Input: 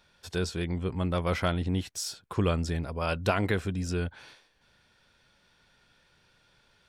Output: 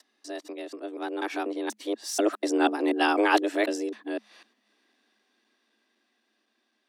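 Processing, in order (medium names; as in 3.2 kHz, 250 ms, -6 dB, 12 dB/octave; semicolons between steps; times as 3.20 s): time reversed locally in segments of 248 ms; Doppler pass-by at 2.92 s, 8 m/s, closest 4.4 m; frequency shift +210 Hz; trim +6.5 dB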